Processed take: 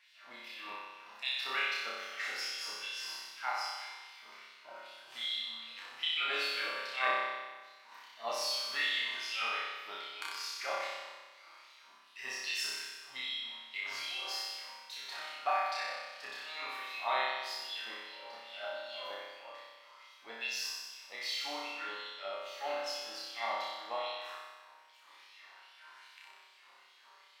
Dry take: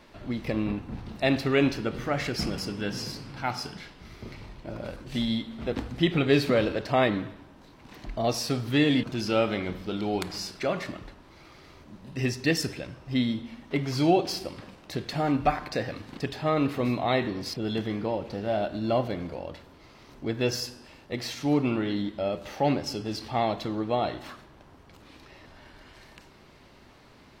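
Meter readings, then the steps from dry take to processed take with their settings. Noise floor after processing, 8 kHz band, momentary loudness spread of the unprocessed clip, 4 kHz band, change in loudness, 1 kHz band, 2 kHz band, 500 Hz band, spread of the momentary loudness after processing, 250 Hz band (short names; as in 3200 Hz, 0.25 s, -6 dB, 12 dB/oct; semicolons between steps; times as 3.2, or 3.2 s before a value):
-60 dBFS, -4.5 dB, 15 LU, -1.0 dB, -8.5 dB, -6.0 dB, -2.0 dB, -16.0 dB, 21 LU, -33.0 dB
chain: resonator bank D#2 sus4, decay 0.26 s; LFO high-pass sine 2.5 Hz 910–3500 Hz; flutter echo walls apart 5.3 m, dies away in 1.3 s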